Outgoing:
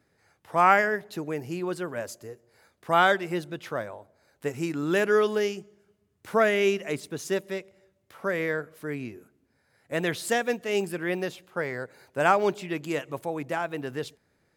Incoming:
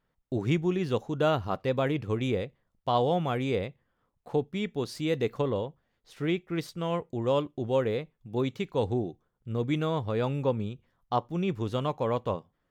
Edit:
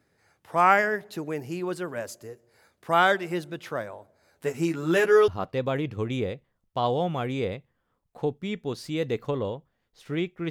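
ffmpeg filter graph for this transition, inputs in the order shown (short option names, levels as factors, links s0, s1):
-filter_complex "[0:a]asettb=1/sr,asplit=3[s0][s1][s2];[s0]atrim=end=4.224[s3];[s1]atrim=start=4.22:end=5.28,asetpts=PTS-STARTPTS,afade=t=in:d=0.004:c=qsin,afade=t=out:st=1.056:d=0.004:c=qsin,asplit=2[s4][s5];[s5]adelay=12,volume=0.668[s6];[s4][s6]amix=inputs=2:normalize=0,atrim=end_sample=46746[s7];[s2]atrim=start=5.276[s8];[s3][s7]acrossfade=d=0.004:c1=hsin:c2=qsin[s9];[s9][s8]acrossfade=d=0.004:c1=qsin:c2=hsin,apad=whole_dur=10.5,atrim=end=10.5,atrim=end=5.282[s10];[1:a]atrim=start=1.388:end=6.61[s11];[s10][s11]acrossfade=d=0.004:c1=hsin:c2=hsin"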